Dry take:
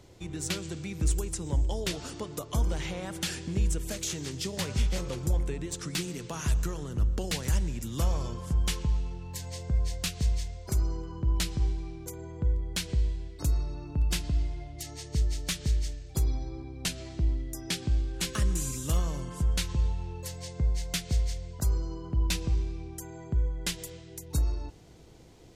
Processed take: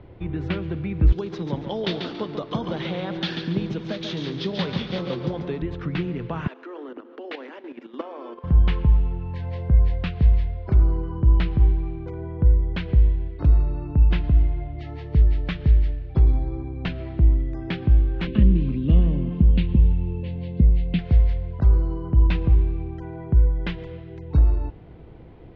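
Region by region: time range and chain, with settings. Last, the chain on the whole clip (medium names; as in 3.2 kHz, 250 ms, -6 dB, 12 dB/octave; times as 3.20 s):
1.12–5.62 s: high-pass 150 Hz 24 dB/octave + high-order bell 4.7 kHz +13.5 dB 1.2 oct + bit-crushed delay 140 ms, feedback 35%, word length 7-bit, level -5.5 dB
6.47–8.44 s: steep high-pass 250 Hz 96 dB/octave + level held to a coarse grid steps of 11 dB + tape noise reduction on one side only encoder only
18.27–20.99 s: FFT filter 130 Hz 0 dB, 210 Hz +10 dB, 360 Hz +2 dB, 1.3 kHz -16 dB, 2.7 kHz +1 dB, 4.4 kHz -2 dB, 7.6 kHz -27 dB + repeats whose band climbs or falls 332 ms, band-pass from 920 Hz, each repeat 1.4 oct, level -10.5 dB
whole clip: Bessel low-pass 1.9 kHz, order 6; bass shelf 180 Hz +3.5 dB; trim +7.5 dB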